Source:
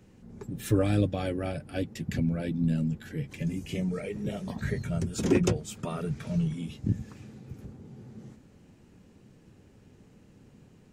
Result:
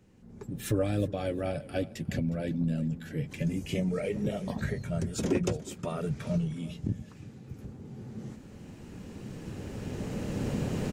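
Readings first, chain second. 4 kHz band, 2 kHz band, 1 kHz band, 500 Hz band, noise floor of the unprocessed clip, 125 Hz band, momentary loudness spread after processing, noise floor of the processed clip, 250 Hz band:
-1.0 dB, -1.0 dB, -0.5 dB, 0.0 dB, -57 dBFS, -1.5 dB, 15 LU, -50 dBFS, -1.5 dB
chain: recorder AGC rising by 8 dB/s; dynamic EQ 580 Hz, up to +5 dB, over -45 dBFS, Q 2.6; on a send: feedback echo 0.361 s, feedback 23%, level -18 dB; on the sum: gain -5 dB

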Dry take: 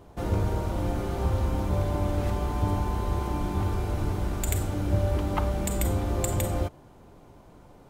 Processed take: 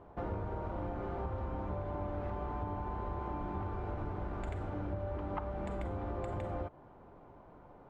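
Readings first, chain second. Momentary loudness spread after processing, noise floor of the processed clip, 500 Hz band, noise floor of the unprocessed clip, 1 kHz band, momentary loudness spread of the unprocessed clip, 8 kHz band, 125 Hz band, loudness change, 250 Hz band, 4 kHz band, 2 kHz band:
14 LU, -56 dBFS, -8.0 dB, -52 dBFS, -6.5 dB, 3 LU, under -30 dB, -13.0 dB, -11.0 dB, -10.5 dB, -20.0 dB, -10.0 dB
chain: LPF 1300 Hz 12 dB/oct; low shelf 490 Hz -10 dB; compressor, threshold -37 dBFS, peak gain reduction 10 dB; gain +2.5 dB

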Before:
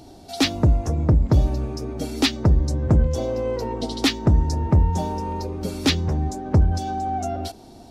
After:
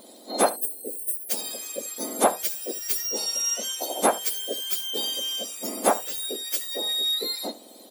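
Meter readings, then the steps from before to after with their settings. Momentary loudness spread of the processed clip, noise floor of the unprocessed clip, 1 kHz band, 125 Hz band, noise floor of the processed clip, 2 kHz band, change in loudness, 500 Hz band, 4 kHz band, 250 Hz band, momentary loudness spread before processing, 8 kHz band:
8 LU, -45 dBFS, -0.5 dB, under -30 dB, -48 dBFS, -4.0 dB, -3.5 dB, -1.5 dB, +2.5 dB, -12.5 dB, 10 LU, +9.0 dB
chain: spectrum mirrored in octaves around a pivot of 1700 Hz; in parallel at -12 dB: soft clip -18.5 dBFS, distortion -12 dB; on the sum: spectral gain 0.49–1.3, 790–7600 Hz -27 dB; echo 73 ms -17.5 dB

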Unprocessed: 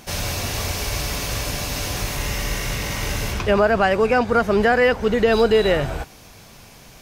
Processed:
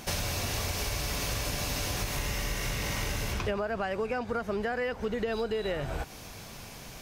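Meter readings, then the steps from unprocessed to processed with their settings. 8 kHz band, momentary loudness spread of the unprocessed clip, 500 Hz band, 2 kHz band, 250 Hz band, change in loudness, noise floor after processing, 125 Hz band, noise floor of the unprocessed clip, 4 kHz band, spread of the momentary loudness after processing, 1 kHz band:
-6.5 dB, 9 LU, -14.0 dB, -11.5 dB, -12.5 dB, -11.5 dB, -45 dBFS, -8.0 dB, -45 dBFS, -8.0 dB, 9 LU, -13.0 dB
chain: compressor 12:1, threshold -28 dBFS, peak gain reduction 16.5 dB

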